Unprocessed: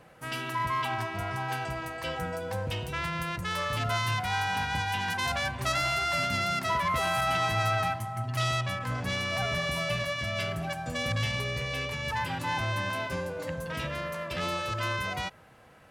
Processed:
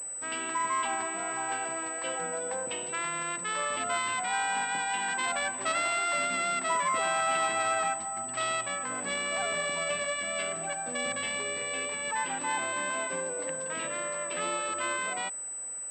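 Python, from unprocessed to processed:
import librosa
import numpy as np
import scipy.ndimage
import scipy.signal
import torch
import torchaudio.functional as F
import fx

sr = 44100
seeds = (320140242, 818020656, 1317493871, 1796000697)

y = scipy.signal.sosfilt(scipy.signal.butter(4, 240.0, 'highpass', fs=sr, output='sos'), x)
y = fx.pwm(y, sr, carrier_hz=8000.0)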